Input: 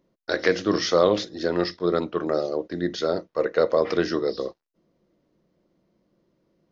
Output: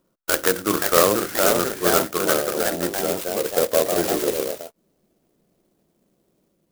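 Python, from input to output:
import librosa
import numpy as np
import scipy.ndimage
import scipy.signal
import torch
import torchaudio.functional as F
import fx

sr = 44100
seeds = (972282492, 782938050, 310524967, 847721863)

y = fx.filter_sweep_lowpass(x, sr, from_hz=1400.0, to_hz=6200.0, start_s=2.36, end_s=3.57, q=4.6)
y = fx.echo_pitch(y, sr, ms=559, semitones=2, count=2, db_per_echo=-3.0)
y = fx.clock_jitter(y, sr, seeds[0], jitter_ms=0.11)
y = y * 10.0 ** (-1.0 / 20.0)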